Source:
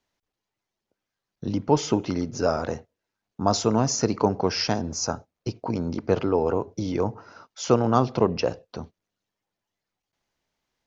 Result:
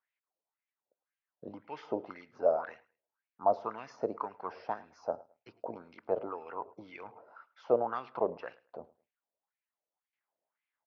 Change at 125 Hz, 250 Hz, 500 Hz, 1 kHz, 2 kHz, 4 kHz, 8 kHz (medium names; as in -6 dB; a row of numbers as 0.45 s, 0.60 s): -28.0 dB, -20.0 dB, -8.5 dB, -8.5 dB, -11.0 dB, under -25 dB, no reading